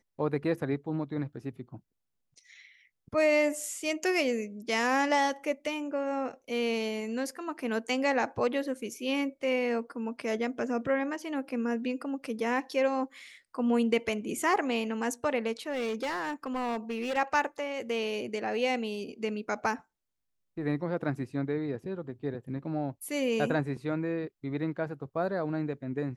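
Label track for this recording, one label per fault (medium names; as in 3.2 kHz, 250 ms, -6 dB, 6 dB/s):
15.700000	17.180000	clipped -28.5 dBFS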